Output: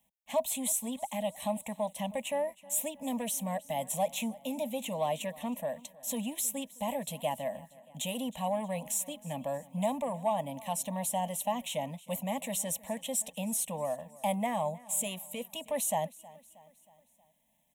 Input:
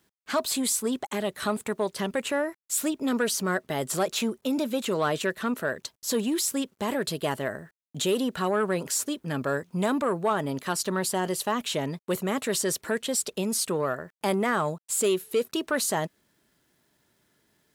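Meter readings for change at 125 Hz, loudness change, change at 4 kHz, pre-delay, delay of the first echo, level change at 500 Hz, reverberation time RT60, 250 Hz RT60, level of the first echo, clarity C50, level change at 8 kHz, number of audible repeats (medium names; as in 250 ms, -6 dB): -6.5 dB, -6.0 dB, -9.0 dB, no reverb, 316 ms, -6.5 dB, no reverb, no reverb, -21.0 dB, no reverb, -4.0 dB, 3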